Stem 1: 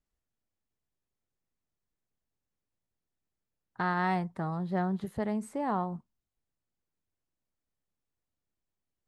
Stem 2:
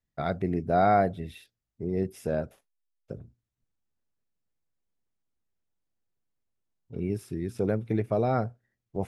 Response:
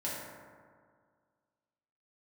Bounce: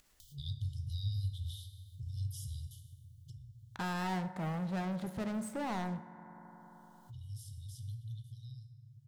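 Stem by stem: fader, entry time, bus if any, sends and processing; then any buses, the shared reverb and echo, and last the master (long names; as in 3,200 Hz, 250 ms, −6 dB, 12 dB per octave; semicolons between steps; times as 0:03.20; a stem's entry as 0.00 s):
−17.0 dB, 0.00 s, send −12.5 dB, leveller curve on the samples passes 5
0:02.76 −2 dB → 0:03.27 −10.5 dB → 0:07.98 −10.5 dB → 0:08.48 −22 dB, 0.20 s, send −5 dB, brick-wall band-stop 140–2,900 Hz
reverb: on, RT60 1.9 s, pre-delay 3 ms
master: upward compression, threshold −44 dBFS; one half of a high-frequency compander encoder only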